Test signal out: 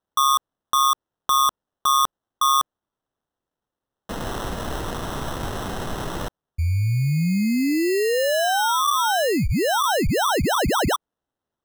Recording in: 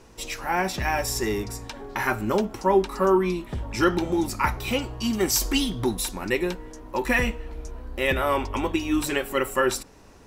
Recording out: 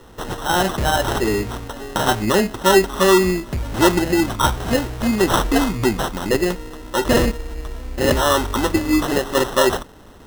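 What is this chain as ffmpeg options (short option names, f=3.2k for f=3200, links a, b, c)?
-af "acrusher=samples=19:mix=1:aa=0.000001,acontrast=31,volume=1.5dB"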